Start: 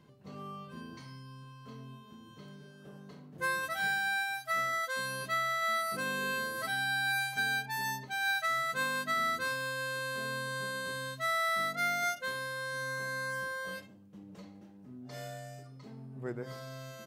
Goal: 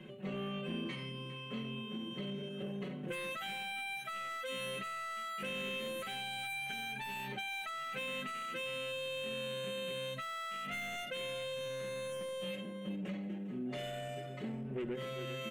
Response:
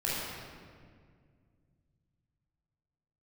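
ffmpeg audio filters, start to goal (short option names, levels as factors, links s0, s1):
-filter_complex "[0:a]aecho=1:1:5.4:0.85,asplit=2[s0][s1];[s1]aecho=0:1:442:0.133[s2];[s0][s2]amix=inputs=2:normalize=0,asoftclip=type=tanh:threshold=0.0126,highshelf=f=3800:t=q:w=3:g=-9,acompressor=threshold=0.00794:ratio=6,equalizer=f=125:t=o:w=1:g=-5,equalizer=f=250:t=o:w=1:g=5,equalizer=f=500:t=o:w=1:g=5,equalizer=f=1000:t=o:w=1:g=-5,equalizer=f=2000:t=o:w=1:g=4,equalizer=f=8000:t=o:w=1:g=5,atempo=1.1,acrossover=split=290|3000[s3][s4][s5];[s4]acompressor=threshold=0.00501:ratio=6[s6];[s3][s6][s5]amix=inputs=3:normalize=0,volume=1.88"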